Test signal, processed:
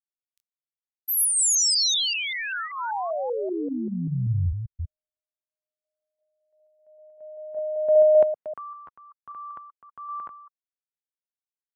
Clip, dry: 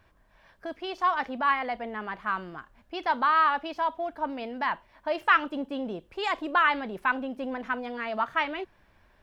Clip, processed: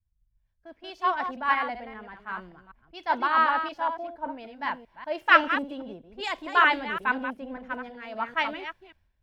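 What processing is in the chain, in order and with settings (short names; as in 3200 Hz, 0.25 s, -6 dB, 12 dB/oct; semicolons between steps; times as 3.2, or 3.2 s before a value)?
reverse delay 0.194 s, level -5.5 dB; notch 1200 Hz, Q 10; three-band expander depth 100%; gain -1.5 dB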